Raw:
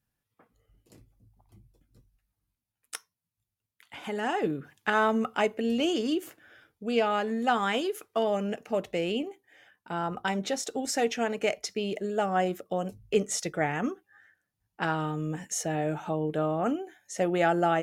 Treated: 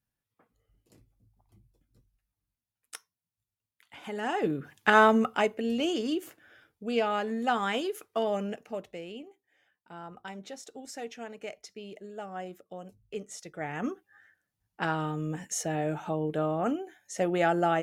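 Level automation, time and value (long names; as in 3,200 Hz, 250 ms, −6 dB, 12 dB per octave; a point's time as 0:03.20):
0:03.97 −5 dB
0:04.98 +5.5 dB
0:05.57 −2 dB
0:08.41 −2 dB
0:09.06 −12.5 dB
0:13.47 −12.5 dB
0:13.90 −1 dB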